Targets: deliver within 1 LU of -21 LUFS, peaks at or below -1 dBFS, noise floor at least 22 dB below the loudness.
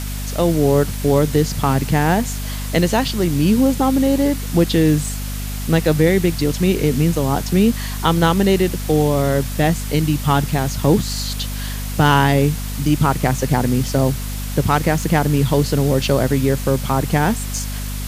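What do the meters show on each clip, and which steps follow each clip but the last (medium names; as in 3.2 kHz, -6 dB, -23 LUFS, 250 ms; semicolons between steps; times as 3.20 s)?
hum 50 Hz; highest harmonic 250 Hz; hum level -24 dBFS; noise floor -25 dBFS; noise floor target -40 dBFS; loudness -18.0 LUFS; peak level -1.5 dBFS; loudness target -21.0 LUFS
-> hum notches 50/100/150/200/250 Hz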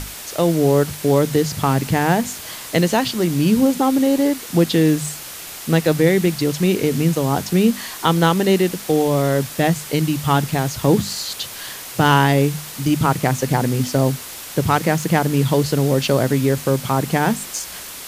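hum not found; noise floor -34 dBFS; noise floor target -41 dBFS
-> noise reduction 7 dB, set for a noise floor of -34 dBFS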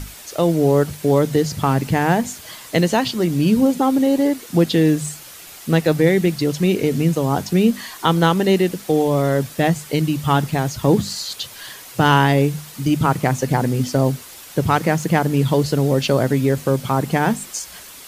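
noise floor -39 dBFS; noise floor target -41 dBFS
-> noise reduction 6 dB, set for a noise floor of -39 dBFS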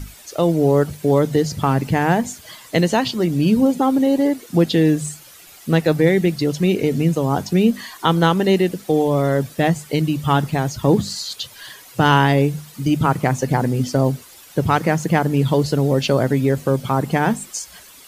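noise floor -44 dBFS; loudness -18.5 LUFS; peak level -2.5 dBFS; loudness target -21.0 LUFS
-> trim -2.5 dB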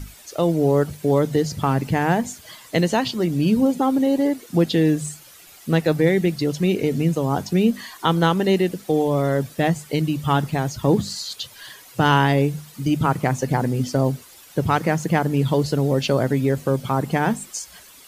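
loudness -21.0 LUFS; peak level -5.0 dBFS; noise floor -46 dBFS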